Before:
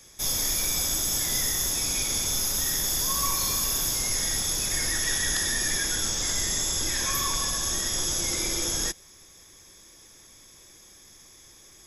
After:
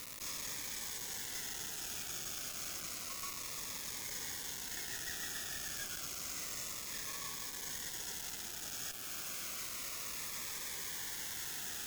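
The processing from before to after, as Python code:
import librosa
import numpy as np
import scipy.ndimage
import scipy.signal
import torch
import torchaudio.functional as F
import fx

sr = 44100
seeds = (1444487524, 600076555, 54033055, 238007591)

y = fx.delta_mod(x, sr, bps=64000, step_db=-24.5)
y = scipy.signal.sosfilt(scipy.signal.butter(4, 7300.0, 'lowpass', fs=sr, output='sos'), y)
y = fx.peak_eq(y, sr, hz=4200.0, db=-13.0, octaves=2.1)
y = fx.rider(y, sr, range_db=10, speed_s=0.5)
y = scipy.signal.sosfilt(scipy.signal.cheby2(4, 40, 620.0, 'highpass', fs=sr, output='sos'), y)
y = fx.quant_dither(y, sr, seeds[0], bits=6, dither='none')
y = fx.tube_stage(y, sr, drive_db=49.0, bias=0.55)
y = fx.notch_cascade(y, sr, direction='falling', hz=0.3)
y = F.gain(torch.from_numpy(y), 13.0).numpy()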